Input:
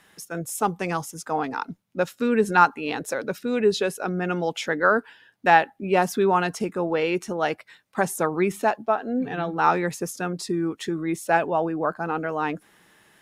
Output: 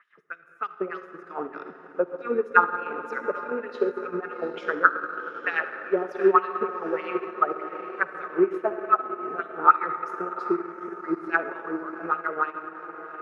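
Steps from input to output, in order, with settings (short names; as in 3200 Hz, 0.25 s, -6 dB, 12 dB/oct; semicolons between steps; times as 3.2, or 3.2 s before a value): thirty-one-band EQ 400 Hz +5 dB, 800 Hz -7 dB, 1250 Hz +12 dB, 8000 Hz -7 dB; LFO band-pass sine 3.3 Hz 340–4700 Hz; resonant high shelf 2900 Hz -10.5 dB, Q 1.5; diffused feedback echo 0.804 s, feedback 56%, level -12 dB; on a send at -5 dB: reverb RT60 2.4 s, pre-delay 38 ms; on the sum: transient shaper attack +4 dB, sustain -7 dB; gain -2 dB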